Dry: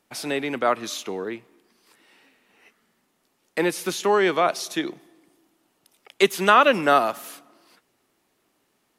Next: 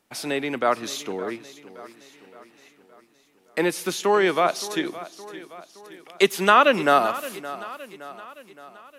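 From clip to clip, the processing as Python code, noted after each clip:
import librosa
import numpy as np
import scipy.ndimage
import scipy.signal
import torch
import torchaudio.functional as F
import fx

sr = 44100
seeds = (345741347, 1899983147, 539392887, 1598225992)

y = fx.echo_feedback(x, sr, ms=568, feedback_pct=52, wet_db=-16.0)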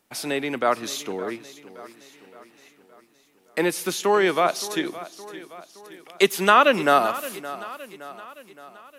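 y = fx.high_shelf(x, sr, hz=10000.0, db=5.5)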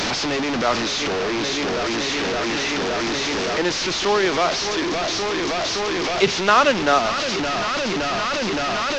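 y = fx.delta_mod(x, sr, bps=32000, step_db=-16.5)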